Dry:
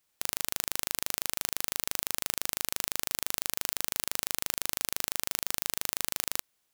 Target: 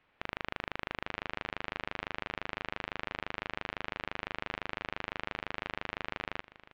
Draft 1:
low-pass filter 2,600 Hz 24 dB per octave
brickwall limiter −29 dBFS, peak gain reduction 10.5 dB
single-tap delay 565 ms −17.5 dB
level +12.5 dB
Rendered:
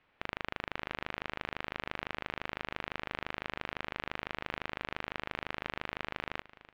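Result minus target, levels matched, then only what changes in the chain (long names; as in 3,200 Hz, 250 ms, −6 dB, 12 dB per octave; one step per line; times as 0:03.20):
echo 295 ms early
change: single-tap delay 860 ms −17.5 dB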